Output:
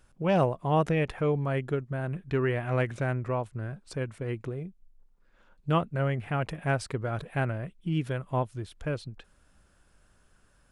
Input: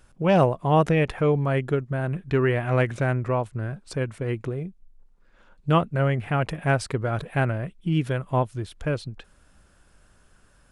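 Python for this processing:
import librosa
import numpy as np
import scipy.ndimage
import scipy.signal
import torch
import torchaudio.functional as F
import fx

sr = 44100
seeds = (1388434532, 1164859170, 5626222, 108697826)

y = x * librosa.db_to_amplitude(-5.5)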